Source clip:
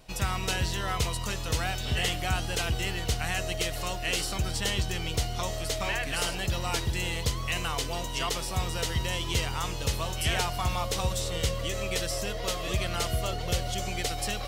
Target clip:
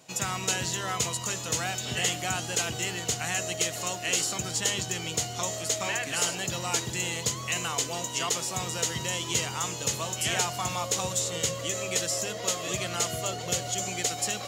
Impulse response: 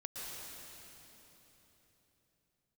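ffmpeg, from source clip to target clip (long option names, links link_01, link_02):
-af "highpass=frequency=120:width=0.5412,highpass=frequency=120:width=1.3066,equalizer=frequency=6900:width_type=o:width=0.29:gain=13.5,bandreject=frequency=50:width_type=h:width=6,bandreject=frequency=100:width_type=h:width=6,bandreject=frequency=150:width_type=h:width=6,bandreject=frequency=200:width_type=h:width=6"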